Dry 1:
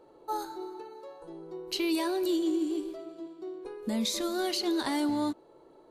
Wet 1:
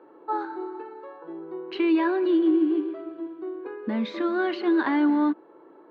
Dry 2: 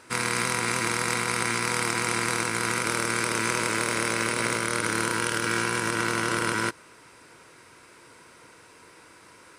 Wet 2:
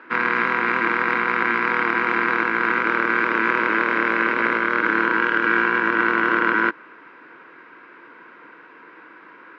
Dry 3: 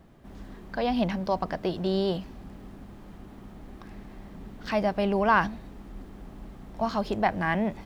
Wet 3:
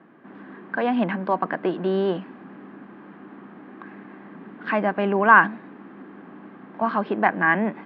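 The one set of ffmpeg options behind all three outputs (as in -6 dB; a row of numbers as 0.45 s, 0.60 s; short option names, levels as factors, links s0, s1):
-af "highpass=f=190:w=0.5412,highpass=f=190:w=1.3066,equalizer=f=310:t=q:w=4:g=5,equalizer=f=610:t=q:w=4:g=-3,equalizer=f=1100:t=q:w=4:g=5,equalizer=f=1600:t=q:w=4:g=8,lowpass=f=2700:w=0.5412,lowpass=f=2700:w=1.3066,volume=1.58"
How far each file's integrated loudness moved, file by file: +6.0 LU, +6.0 LU, +6.0 LU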